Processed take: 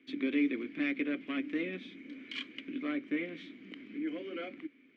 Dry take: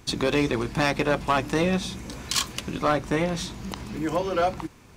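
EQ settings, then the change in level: vowel filter i; HPF 210 Hz 6 dB/oct; three-band isolator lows -13 dB, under 280 Hz, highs -21 dB, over 2700 Hz; +6.5 dB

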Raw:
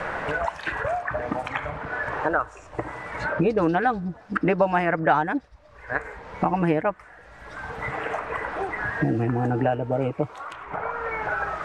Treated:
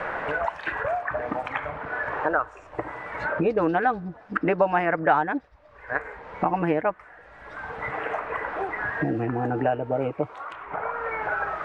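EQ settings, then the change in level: tone controls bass -6 dB, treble -12 dB; 0.0 dB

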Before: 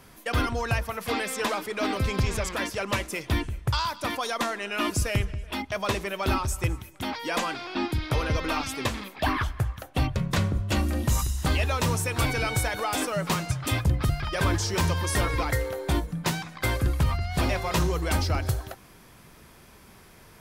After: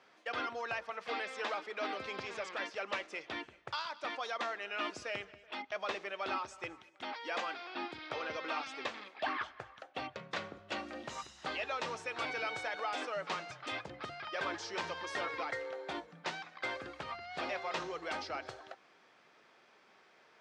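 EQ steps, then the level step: BPF 500–7800 Hz; air absorption 140 m; notch 1000 Hz, Q 12; -6.5 dB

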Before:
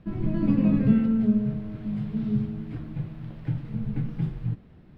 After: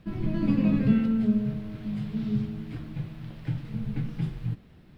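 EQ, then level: high shelf 2500 Hz +12 dB; -2.0 dB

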